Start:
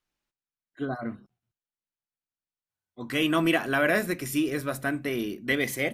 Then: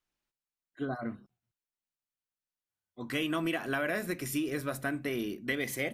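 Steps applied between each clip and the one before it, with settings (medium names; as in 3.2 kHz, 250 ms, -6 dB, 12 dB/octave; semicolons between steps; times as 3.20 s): compression, threshold -25 dBFS, peak gain reduction 6.5 dB; trim -3 dB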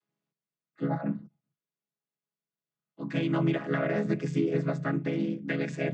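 vocoder on a held chord minor triad, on C#3; trim +5.5 dB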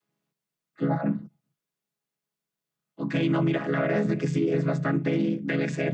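peak limiter -22 dBFS, peak gain reduction 7.5 dB; trim +6 dB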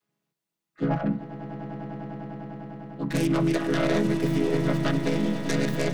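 tracing distortion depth 0.29 ms; echo with a slow build-up 100 ms, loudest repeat 8, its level -15 dB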